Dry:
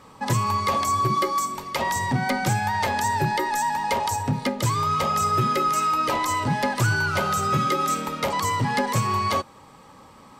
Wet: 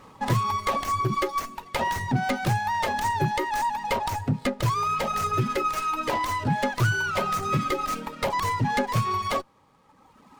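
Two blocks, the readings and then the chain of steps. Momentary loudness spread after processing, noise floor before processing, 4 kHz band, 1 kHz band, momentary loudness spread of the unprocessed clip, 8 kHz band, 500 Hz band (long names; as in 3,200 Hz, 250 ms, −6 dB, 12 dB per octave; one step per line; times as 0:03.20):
4 LU, −49 dBFS, −3.5 dB, −3.0 dB, 4 LU, −7.5 dB, −1.5 dB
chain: reverb reduction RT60 1.8 s
windowed peak hold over 5 samples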